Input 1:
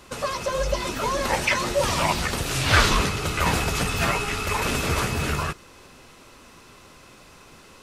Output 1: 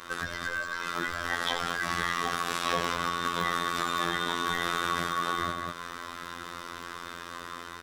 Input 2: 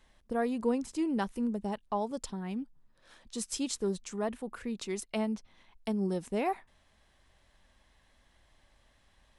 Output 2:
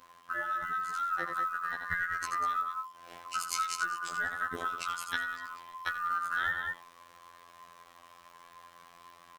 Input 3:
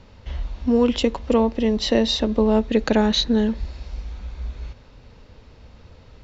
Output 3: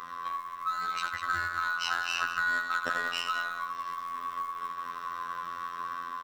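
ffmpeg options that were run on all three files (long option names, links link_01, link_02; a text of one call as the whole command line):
ffmpeg -i in.wav -filter_complex "[0:a]afftfilt=real='real(if(lt(b,960),b+48*(1-2*mod(floor(b/48),2)),b),0)':imag='imag(if(lt(b,960),b+48*(1-2*mod(floor(b/48),2)),b),0)':win_size=2048:overlap=0.75,asplit=2[link_01][link_02];[link_02]aeval=exprs='0.112*(abs(mod(val(0)/0.112+3,4)-2)-1)':channel_layout=same,volume=-4dB[link_03];[link_01][link_03]amix=inputs=2:normalize=0,aecho=1:1:84.55|195.3:0.355|0.282,acrusher=bits=9:mix=0:aa=0.000001,highshelf=frequency=3300:gain=-8.5,acrusher=bits=8:mode=log:mix=0:aa=0.000001,acompressor=threshold=-34dB:ratio=5,aeval=exprs='0.075*(cos(1*acos(clip(val(0)/0.075,-1,1)))-cos(1*PI/2))+0.00133*(cos(4*acos(clip(val(0)/0.075,-1,1)))-cos(4*PI/2))':channel_layout=same,dynaudnorm=framelen=740:gausssize=3:maxgain=3dB,lowshelf=frequency=92:gain=-10,afftfilt=real='hypot(re,im)*cos(PI*b)':imag='0':win_size=2048:overlap=0.75,volume=5.5dB" out.wav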